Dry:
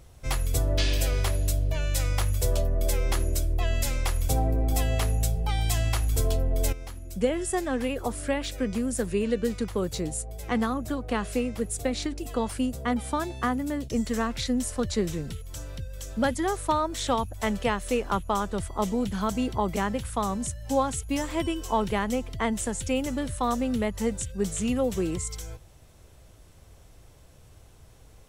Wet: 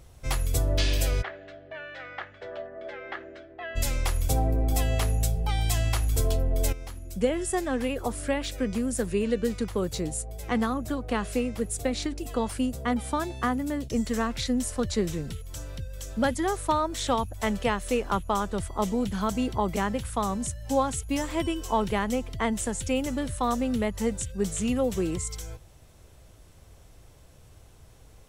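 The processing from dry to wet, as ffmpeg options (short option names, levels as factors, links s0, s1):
-filter_complex "[0:a]asplit=3[s0][s1][s2];[s0]afade=t=out:st=1.21:d=0.02[s3];[s1]highpass=490,equalizer=f=510:t=q:w=4:g=-6,equalizer=f=1000:t=q:w=4:g=-8,equalizer=f=1700:t=q:w=4:g=6,equalizer=f=2500:t=q:w=4:g=-7,lowpass=f=2600:w=0.5412,lowpass=f=2600:w=1.3066,afade=t=in:st=1.21:d=0.02,afade=t=out:st=3.75:d=0.02[s4];[s2]afade=t=in:st=3.75:d=0.02[s5];[s3][s4][s5]amix=inputs=3:normalize=0"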